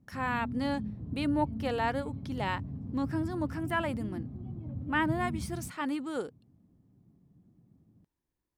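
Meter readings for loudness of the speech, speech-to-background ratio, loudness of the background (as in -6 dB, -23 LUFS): -33.5 LUFS, 6.0 dB, -39.5 LUFS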